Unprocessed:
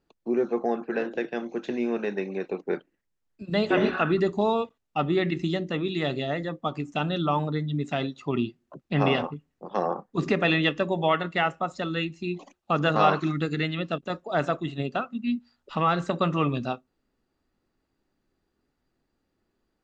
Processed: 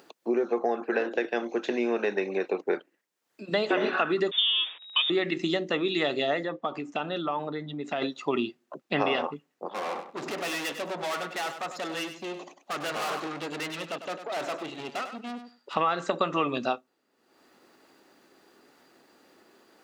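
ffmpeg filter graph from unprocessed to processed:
-filter_complex "[0:a]asettb=1/sr,asplit=3[s0][s1][s2];[s0]atrim=end=4.314[s3];[s1]atrim=start=4.31:end=5.1,asetpts=PTS-STARTPTS,afade=t=in:d=0.004:c=qsin,afade=t=out:st=0.786:d=0.004:c=qsin,aeval=exprs='val(0)+0.5*0.0188*sgn(val(0))':c=same,agate=range=0.0224:threshold=0.0178:ratio=3:release=100:detection=peak,lowpass=f=3200:t=q:w=0.5098,lowpass=f=3200:t=q:w=0.6013,lowpass=f=3200:t=q:w=0.9,lowpass=f=3200:t=q:w=2.563,afreqshift=-3800[s4];[s2]atrim=start=5.096[s5];[s3][s4]acrossfade=d=0.004:c1=hsin:c2=qsin[s6];[s6][s5]acrossfade=d=0.004:c1=qsin:c2=hsin,asettb=1/sr,asplit=3[s7][s8][s9];[s7]atrim=end=6.434[s10];[s8]atrim=start=6.43:end=8.02,asetpts=PTS-STARTPTS,afade=t=in:d=0.004:c=qsin,afade=t=out:st=1.586:d=0.004:c=qsin,aemphasis=mode=reproduction:type=50fm,acompressor=threshold=0.0355:ratio=6:attack=3.2:release=140:knee=1:detection=peak[s11];[s9]atrim=start=8.016[s12];[s10][s11]acrossfade=d=0.004:c1=hsin:c2=qsin[s13];[s13][s12]acrossfade=d=0.004:c1=qsin:c2=hsin,asettb=1/sr,asplit=3[s14][s15][s16];[s14]atrim=end=9.704[s17];[s15]atrim=start=9.7:end=15.75,asetpts=PTS-STARTPTS,afade=t=in:d=0.004:c=qsin,afade=t=out:st=6.046:d=0.004:c=qsin,aeval=exprs='(tanh(56.2*val(0)+0.5)-tanh(0.5))/56.2':c=same,aecho=1:1:99|198:0.316|0.0506,atrim=end_sample=266805[s18];[s16]atrim=start=15.746[s19];[s17][s18]acrossfade=d=0.004:c1=hsin:c2=qsin[s20];[s20][s19]acrossfade=d=0.004:c1=qsin:c2=hsin,acompressor=mode=upward:threshold=0.00501:ratio=2.5,highpass=360,acompressor=threshold=0.0398:ratio=6,volume=2"

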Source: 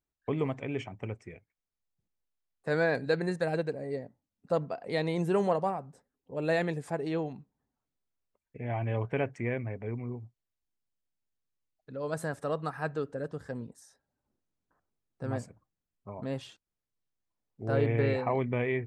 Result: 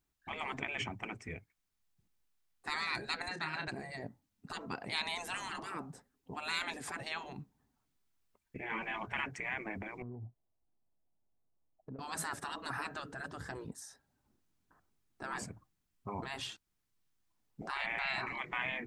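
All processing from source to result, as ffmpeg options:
-filter_complex "[0:a]asettb=1/sr,asplit=3[s0][s1][s2];[s0]atrim=end=3.284[s3];[s1]atrim=start=3.28:end=3.68,asetpts=PTS-STARTPTS,afade=t=in:d=0.004:c=qsin,afade=t=out:st=0.396:d=0.004:c=qsin,highpass=270,lowpass=3800,asplit=2[s4][s5];[s5]adelay=30,volume=0.335[s6];[s4][s6]amix=inputs=2:normalize=0,atrim=end_sample=17640[s7];[s2]atrim=start=3.676[s8];[s3][s7]acrossfade=d=0.004:c1=hsin:c2=qsin[s9];[s9][s8]acrossfade=d=0.004:c1=qsin:c2=hsin,asettb=1/sr,asplit=3[s10][s11][s12];[s10]atrim=end=10.024[s13];[s11]atrim=start=10.02:end=11.99,asetpts=PTS-STARTPTS,afade=t=in:d=0.004:c=qsin,afade=t=out:st=1.966:d=0.004:c=qsin,lowpass=f=670:t=q:w=2.3,acompressor=threshold=0.00447:ratio=10:attack=3.2:release=140:knee=1:detection=peak[s14];[s12]atrim=start=11.986[s15];[s13][s14]acrossfade=d=0.004:c1=hsin:c2=qsin[s16];[s16][s15]acrossfade=d=0.004:c1=qsin:c2=hsin,afftfilt=real='re*lt(hypot(re,im),0.0447)':imag='im*lt(hypot(re,im),0.0447)':win_size=1024:overlap=0.75,equalizer=f=530:t=o:w=0.62:g=-7.5,volume=2.24"

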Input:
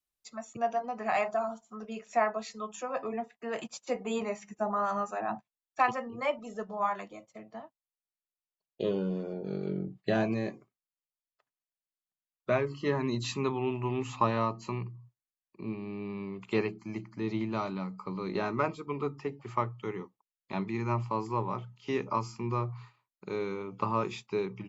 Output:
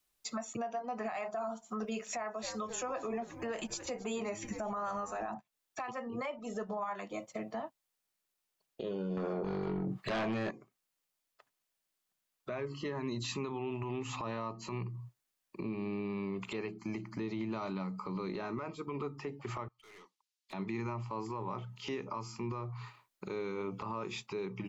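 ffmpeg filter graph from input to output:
-filter_complex "[0:a]asettb=1/sr,asplit=3[s0][s1][s2];[s0]atrim=end=1.874[s3];[s1]atrim=start=1.87:end=5.34,asetpts=PTS-STARTPTS,afade=t=in:d=0.004:c=qsin,afade=t=out:st=3.466:d=0.004:c=qsin,highshelf=f=6400:g=7.5,asplit=7[s4][s5][s6][s7][s8][s9][s10];[s5]adelay=265,afreqshift=-120,volume=0.106[s11];[s6]adelay=530,afreqshift=-240,volume=0.0668[s12];[s7]adelay=795,afreqshift=-360,volume=0.0422[s13];[s8]adelay=1060,afreqshift=-480,volume=0.0266[s14];[s9]adelay=1325,afreqshift=-600,volume=0.0166[s15];[s10]adelay=1590,afreqshift=-720,volume=0.0105[s16];[s4][s11][s12][s13][s14][s15][s16]amix=inputs=7:normalize=0,atrim=end_sample=153027[s17];[s2]atrim=start=5.336[s18];[s3][s17]acrossfade=d=0.004:c1=hsin:c2=qsin[s19];[s19][s18]acrossfade=d=0.004:c1=qsin:c2=hsin,asettb=1/sr,asplit=3[s20][s21][s22];[s20]atrim=end=9.174[s23];[s21]atrim=start=9.17:end=10.51,asetpts=PTS-STARTPTS,afade=t=in:d=0.004:c=qsin,afade=t=out:st=1.336:d=0.004:c=qsin,equalizer=f=1200:w=1.2:g=11,acompressor=threshold=0.0141:ratio=2.5:attack=3.2:release=140:knee=1:detection=peak,aeval=exprs='0.0668*sin(PI/2*2.82*val(0)/0.0668)':c=same[s24];[s22]atrim=start=10.506[s25];[s23][s24]acrossfade=d=0.004:c1=hsin:c2=qsin[s26];[s26][s25]acrossfade=d=0.004:c1=qsin:c2=hsin,asettb=1/sr,asplit=3[s27][s28][s29];[s27]atrim=end=19.684[s30];[s28]atrim=start=19.68:end=20.53,asetpts=PTS-STARTPTS,afade=t=in:d=0.004:c=qsin,afade=t=out:st=0.846:d=0.004:c=qsin,bandpass=f=4700:t=q:w=1.2,aeval=exprs='(tanh(1260*val(0)+0.15)-tanh(0.15))/1260':c=same[s31];[s29]atrim=start=20.526[s32];[s30][s31]acrossfade=d=0.004:c1=hsin:c2=qsin[s33];[s33][s32]acrossfade=d=0.004:c1=qsin:c2=hsin,equalizer=f=72:t=o:w=1.6:g=-4.5,acompressor=threshold=0.00631:ratio=5,alimiter=level_in=5.96:limit=0.0631:level=0:latency=1:release=42,volume=0.168,volume=3.35"

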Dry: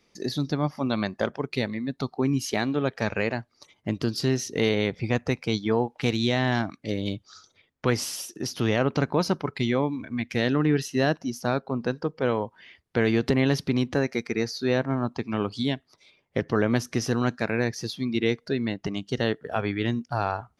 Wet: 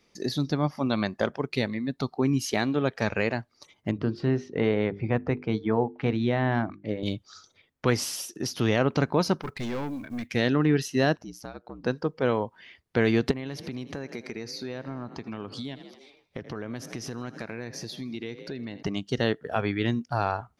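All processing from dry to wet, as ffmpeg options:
-filter_complex "[0:a]asettb=1/sr,asplit=3[s0][s1][s2];[s0]atrim=end=3.914[s3];[s1]atrim=start=3.91:end=7.03,asetpts=PTS-STARTPTS,afade=t=in:d=0.004:c=qsin,afade=t=out:st=3.116:d=0.004:c=qsin,lowpass=1800,bandreject=f=50:t=h:w=6,bandreject=f=100:t=h:w=6,bandreject=f=150:t=h:w=6,bandreject=f=200:t=h:w=6,bandreject=f=250:t=h:w=6,bandreject=f=300:t=h:w=6,bandreject=f=350:t=h:w=6,bandreject=f=400:t=h:w=6,bandreject=f=450:t=h:w=6[s4];[s2]atrim=start=7.026[s5];[s3][s4]acrossfade=d=0.004:c1=hsin:c2=qsin[s6];[s6][s5]acrossfade=d=0.004:c1=qsin:c2=hsin,asettb=1/sr,asplit=3[s7][s8][s9];[s7]atrim=end=9.414[s10];[s8]atrim=start=9.41:end=10.31,asetpts=PTS-STARTPTS,afade=t=in:d=0.004:c=qsin,afade=t=out:st=0.896:d=0.004:c=qsin,acrusher=bits=7:mode=log:mix=0:aa=0.000001,aeval=exprs='(tanh(25.1*val(0)+0.3)-tanh(0.3))/25.1':c=same[s11];[s9]atrim=start=10.306[s12];[s10][s11]acrossfade=d=0.004:c1=hsin:c2=qsin[s13];[s13][s12]acrossfade=d=0.004:c1=qsin:c2=hsin,asettb=1/sr,asplit=3[s14][s15][s16];[s14]atrim=end=11.154[s17];[s15]atrim=start=11.15:end=11.84,asetpts=PTS-STARTPTS,afade=t=in:d=0.004:c=qsin,afade=t=out:st=0.686:d=0.004:c=qsin,acompressor=threshold=0.0112:ratio=2.5:attack=3.2:release=140:knee=1:detection=peak,aeval=exprs='val(0)*sin(2*PI*59*n/s)':c=same[s18];[s16]atrim=start=11.836[s19];[s17][s18]acrossfade=d=0.004:c1=hsin:c2=qsin[s20];[s20][s19]acrossfade=d=0.004:c1=qsin:c2=hsin,asettb=1/sr,asplit=3[s21][s22][s23];[s21]atrim=end=13.314[s24];[s22]atrim=start=13.31:end=18.83,asetpts=PTS-STARTPTS,afade=t=in:d=0.004:c=qsin,afade=t=out:st=5.516:d=0.004:c=qsin,asplit=7[s25][s26][s27][s28][s29][s30][s31];[s26]adelay=80,afreqshift=30,volume=0.1[s32];[s27]adelay=160,afreqshift=60,volume=0.0638[s33];[s28]adelay=240,afreqshift=90,volume=0.0407[s34];[s29]adelay=320,afreqshift=120,volume=0.0263[s35];[s30]adelay=400,afreqshift=150,volume=0.0168[s36];[s31]adelay=480,afreqshift=180,volume=0.0107[s37];[s25][s32][s33][s34][s35][s36][s37]amix=inputs=7:normalize=0,atrim=end_sample=243432,acompressor=threshold=0.0224:ratio=4:attack=3.2:release=140:knee=1:detection=peak[s38];[s23]atrim=start=18.826[s39];[s24][s38]acrossfade=d=0.004:c1=hsin:c2=qsin[s40];[s40][s39]acrossfade=d=0.004:c1=qsin:c2=hsin"

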